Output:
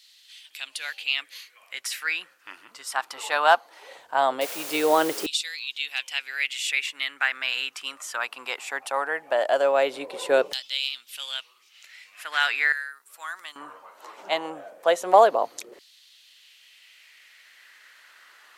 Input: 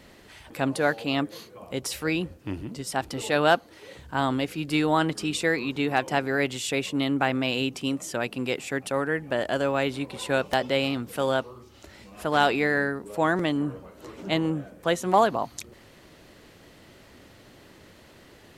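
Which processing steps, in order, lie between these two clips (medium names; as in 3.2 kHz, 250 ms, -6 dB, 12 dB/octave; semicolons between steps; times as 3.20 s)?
4.41–5.26 s: word length cut 6-bit, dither triangular; LFO high-pass saw down 0.19 Hz 420–4000 Hz; 12.72–13.56 s: pre-emphasis filter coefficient 0.9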